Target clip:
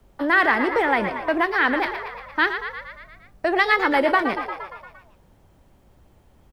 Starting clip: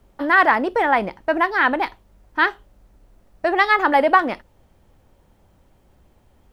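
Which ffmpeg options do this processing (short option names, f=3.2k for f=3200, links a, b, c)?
-filter_complex "[0:a]asplit=8[a][b][c][d][e][f][g][h];[b]adelay=116,afreqshift=53,volume=-10dB[i];[c]adelay=232,afreqshift=106,volume=-14.3dB[j];[d]adelay=348,afreqshift=159,volume=-18.6dB[k];[e]adelay=464,afreqshift=212,volume=-22.9dB[l];[f]adelay=580,afreqshift=265,volume=-27.2dB[m];[g]adelay=696,afreqshift=318,volume=-31.5dB[n];[h]adelay=812,afreqshift=371,volume=-35.8dB[o];[a][i][j][k][l][m][n][o]amix=inputs=8:normalize=0,acrossover=split=250|580|1400[p][q][r][s];[r]acompressor=threshold=-28dB:ratio=6[t];[p][q][t][s]amix=inputs=4:normalize=0"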